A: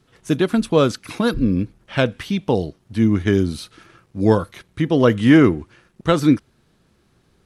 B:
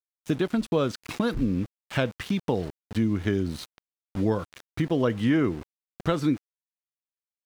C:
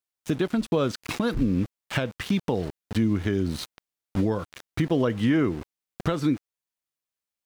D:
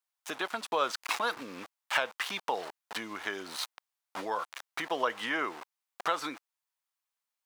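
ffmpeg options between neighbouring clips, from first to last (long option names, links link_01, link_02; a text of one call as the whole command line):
ffmpeg -i in.wav -af "aeval=exprs='val(0)*gte(abs(val(0)),0.0224)':channel_layout=same,highshelf=frequency=8800:gain=-9,acompressor=threshold=-25dB:ratio=2.5" out.wav
ffmpeg -i in.wav -af "alimiter=limit=-19dB:level=0:latency=1:release=362,volume=5dB" out.wav
ffmpeg -i in.wav -af "highpass=frequency=900:width_type=q:width=1.7" out.wav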